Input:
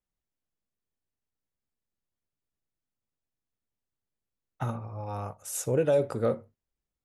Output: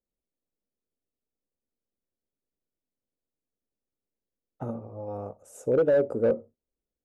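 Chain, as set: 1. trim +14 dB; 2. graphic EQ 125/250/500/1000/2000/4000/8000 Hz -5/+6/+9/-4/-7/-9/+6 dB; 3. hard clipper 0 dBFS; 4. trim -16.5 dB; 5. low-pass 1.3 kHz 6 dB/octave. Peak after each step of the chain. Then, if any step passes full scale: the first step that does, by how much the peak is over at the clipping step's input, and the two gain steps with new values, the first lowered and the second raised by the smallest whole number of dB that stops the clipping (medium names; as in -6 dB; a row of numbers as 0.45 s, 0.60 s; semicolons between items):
-1.0 dBFS, +6.5 dBFS, 0.0 dBFS, -16.5 dBFS, -16.5 dBFS; step 2, 6.5 dB; step 1 +7 dB, step 4 -9.5 dB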